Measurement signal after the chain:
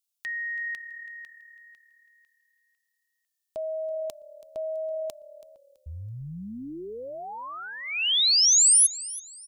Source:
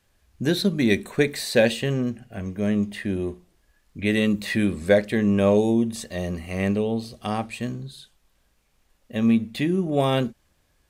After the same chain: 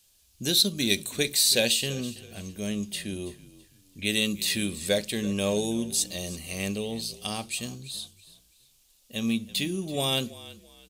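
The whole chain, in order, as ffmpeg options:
ffmpeg -i in.wav -filter_complex "[0:a]asplit=4[link_01][link_02][link_03][link_04];[link_02]adelay=329,afreqshift=-37,volume=-18dB[link_05];[link_03]adelay=658,afreqshift=-74,volume=-27.9dB[link_06];[link_04]adelay=987,afreqshift=-111,volume=-37.8dB[link_07];[link_01][link_05][link_06][link_07]amix=inputs=4:normalize=0,aexciter=amount=8.6:drive=2.3:freq=2700,volume=-8.5dB" out.wav

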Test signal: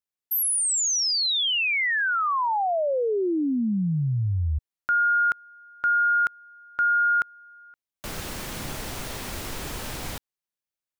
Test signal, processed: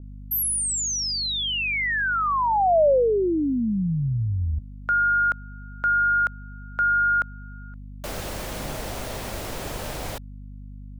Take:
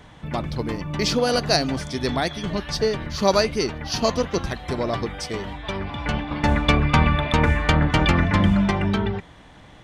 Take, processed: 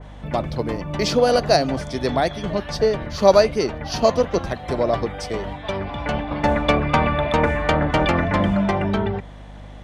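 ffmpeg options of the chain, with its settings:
ffmpeg -i in.wav -filter_complex "[0:a]equalizer=frequency=600:width=1.6:gain=7.5,acrossover=split=190[link_01][link_02];[link_01]alimiter=limit=-21.5dB:level=0:latency=1:release=12[link_03];[link_03][link_02]amix=inputs=2:normalize=0,aeval=exprs='val(0)+0.0126*(sin(2*PI*50*n/s)+sin(2*PI*2*50*n/s)/2+sin(2*PI*3*50*n/s)/3+sin(2*PI*4*50*n/s)/4+sin(2*PI*5*50*n/s)/5)':channel_layout=same,adynamicequalizer=threshold=0.0141:dfrequency=2500:dqfactor=0.7:tfrequency=2500:tqfactor=0.7:attack=5:release=100:ratio=0.375:range=2:mode=cutabove:tftype=highshelf" out.wav

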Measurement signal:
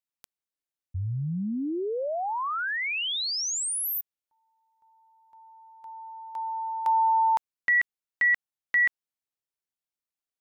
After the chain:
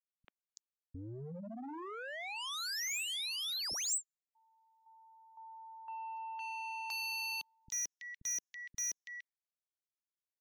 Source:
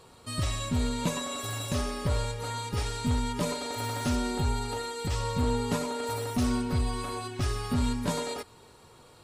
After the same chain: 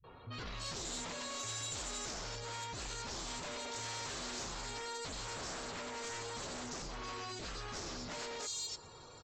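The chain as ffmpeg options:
ffmpeg -i in.wav -filter_complex "[0:a]acompressor=threshold=-25dB:ratio=8:attack=1.7:release=374:knee=6:detection=peak,acrossover=split=210|3400[link_01][link_02][link_03];[link_02]adelay=40[link_04];[link_03]adelay=330[link_05];[link_01][link_04][link_05]amix=inputs=3:normalize=0,aresample=16000,aeval=exprs='0.0211*(abs(mod(val(0)/0.0211+3,4)-2)-1)':channel_layout=same,aresample=44100,alimiter=level_in=13dB:limit=-24dB:level=0:latency=1,volume=-13dB,adynamicequalizer=threshold=0.00112:dfrequency=170:dqfactor=0.89:tfrequency=170:tqfactor=0.89:attack=5:release=100:ratio=0.375:range=2:mode=cutabove:tftype=bell,asoftclip=type=tanh:threshold=-39.5dB,afftdn=noise_reduction=19:noise_floor=-66,aemphasis=mode=production:type=75kf" out.wav

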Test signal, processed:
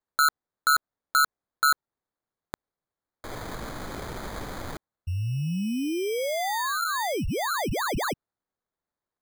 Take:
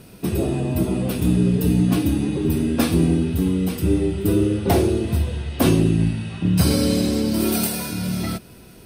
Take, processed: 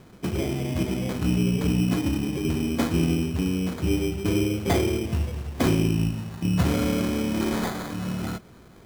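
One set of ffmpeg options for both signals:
ffmpeg -i in.wav -af "acrusher=samples=16:mix=1:aa=0.000001,volume=-5dB" out.wav

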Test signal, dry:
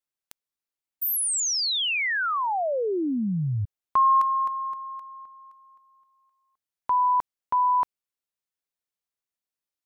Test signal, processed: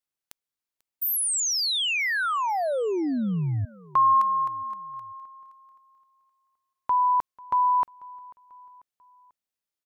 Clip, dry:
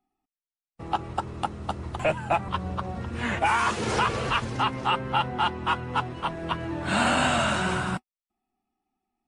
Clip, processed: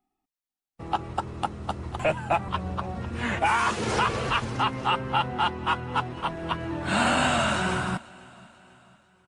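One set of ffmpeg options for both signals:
ffmpeg -i in.wav -af "aecho=1:1:492|984|1476:0.0708|0.0347|0.017" out.wav

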